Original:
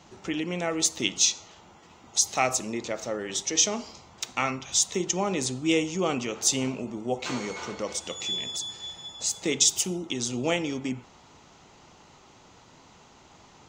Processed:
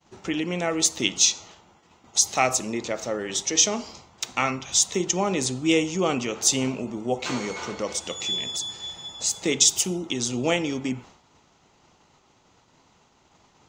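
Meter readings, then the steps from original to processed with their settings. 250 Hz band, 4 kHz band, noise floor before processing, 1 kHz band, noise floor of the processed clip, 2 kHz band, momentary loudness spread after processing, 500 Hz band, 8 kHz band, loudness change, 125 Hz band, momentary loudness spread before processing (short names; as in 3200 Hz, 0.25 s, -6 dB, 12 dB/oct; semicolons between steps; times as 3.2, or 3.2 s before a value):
+3.0 dB, +3.0 dB, -55 dBFS, +3.0 dB, -61 dBFS, +3.0 dB, 11 LU, +3.0 dB, +3.0 dB, +3.0 dB, +3.0 dB, 11 LU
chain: expander -46 dBFS; gain +3 dB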